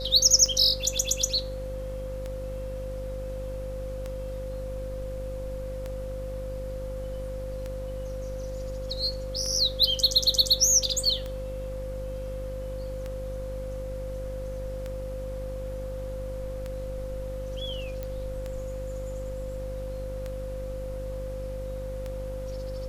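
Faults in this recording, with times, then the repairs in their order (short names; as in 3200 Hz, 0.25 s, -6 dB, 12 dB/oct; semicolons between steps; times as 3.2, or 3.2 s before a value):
buzz 50 Hz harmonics 14 -36 dBFS
tick 33 1/3 rpm -21 dBFS
tone 520 Hz -35 dBFS
18.03 pop -21 dBFS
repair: de-click; de-hum 50 Hz, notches 14; notch 520 Hz, Q 30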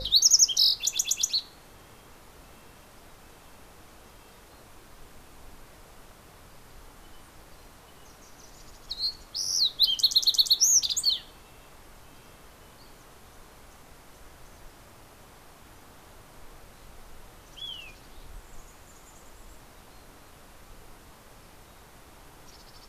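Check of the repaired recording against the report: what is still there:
none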